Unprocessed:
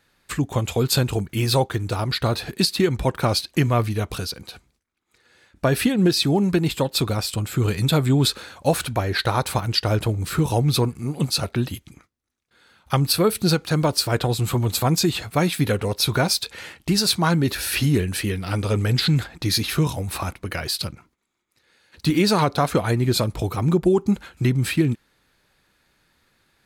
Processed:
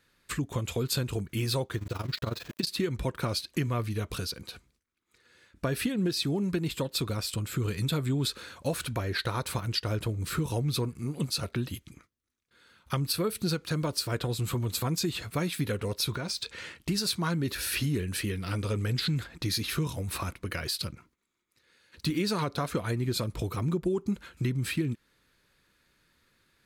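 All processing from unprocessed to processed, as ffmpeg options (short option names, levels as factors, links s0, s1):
-filter_complex "[0:a]asettb=1/sr,asplit=3[s0][s1][s2];[s0]atrim=end=1.784[s3];[s1]atrim=start=1.78:end=2.67,asetpts=PTS-STARTPTS,afade=t=in:d=0.004:c=qsin,afade=t=out:st=0.886:d=0.004:c=qsin,aeval=exprs='val(0)*gte(abs(val(0)),0.0224)':c=same,equalizer=f=9400:w=3.7:g=-11.5,tremolo=f=22:d=0.857[s4];[s2]atrim=start=2.666[s5];[s3][s4]acrossfade=d=0.004:c1=hsin:c2=qsin[s6];[s6][s5]acrossfade=d=0.004:c1=qsin:c2=hsin,asettb=1/sr,asplit=3[s7][s8][s9];[s7]atrim=end=16.124[s10];[s8]atrim=start=16.12:end=16.75,asetpts=PTS-STARTPTS,afade=t=in:d=0.004:c=qsin,afade=t=out:st=0.626:d=0.004:c=qsin,equalizer=f=12000:w=2.2:g=-15,acompressor=threshold=0.0708:ratio=5:attack=3.2:release=140:knee=1:detection=peak[s11];[s9]atrim=start=16.746[s12];[s10][s11]acrossfade=d=0.004:c1=hsin:c2=qsin[s13];[s13][s12]acrossfade=d=0.004:c1=qsin:c2=hsin,equalizer=f=790:t=o:w=0.28:g=-9.5,bandreject=f=620:w=17,acompressor=threshold=0.0501:ratio=2,volume=0.631"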